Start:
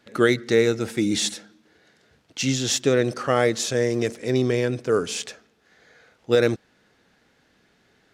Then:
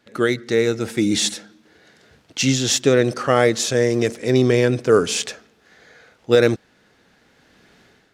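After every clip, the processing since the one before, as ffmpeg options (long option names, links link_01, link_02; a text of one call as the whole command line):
ffmpeg -i in.wav -af "dynaudnorm=framelen=520:gausssize=3:maxgain=12dB,volume=-1dB" out.wav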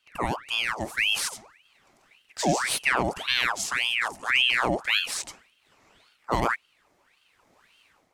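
ffmpeg -i in.wav -af "equalizer=frequency=500:width_type=o:width=1:gain=-11,equalizer=frequency=2000:width_type=o:width=1:gain=-9,equalizer=frequency=4000:width_type=o:width=1:gain=-10,aeval=exprs='val(0)*sin(2*PI*1700*n/s+1700*0.75/1.8*sin(2*PI*1.8*n/s))':channel_layout=same" out.wav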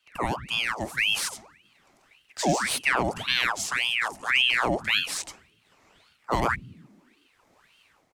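ffmpeg -i in.wav -filter_complex "[0:a]acrossover=split=170|1100|5200[link_01][link_02][link_03][link_04];[link_01]asplit=7[link_05][link_06][link_07][link_08][link_09][link_10][link_11];[link_06]adelay=135,afreqshift=41,volume=-7dB[link_12];[link_07]adelay=270,afreqshift=82,volume=-13dB[link_13];[link_08]adelay=405,afreqshift=123,volume=-19dB[link_14];[link_09]adelay=540,afreqshift=164,volume=-25.1dB[link_15];[link_10]adelay=675,afreqshift=205,volume=-31.1dB[link_16];[link_11]adelay=810,afreqshift=246,volume=-37.1dB[link_17];[link_05][link_12][link_13][link_14][link_15][link_16][link_17]amix=inputs=7:normalize=0[link_18];[link_04]asoftclip=type=hard:threshold=-26dB[link_19];[link_18][link_02][link_03][link_19]amix=inputs=4:normalize=0" out.wav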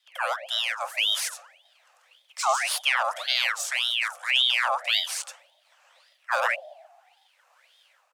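ffmpeg -i in.wav -af "afreqshift=490" out.wav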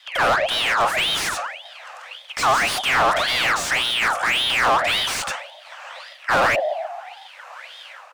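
ffmpeg -i in.wav -filter_complex "[0:a]asplit=2[link_01][link_02];[link_02]highpass=frequency=720:poles=1,volume=33dB,asoftclip=type=tanh:threshold=-9dB[link_03];[link_01][link_03]amix=inputs=2:normalize=0,lowpass=frequency=1700:poles=1,volume=-6dB" out.wav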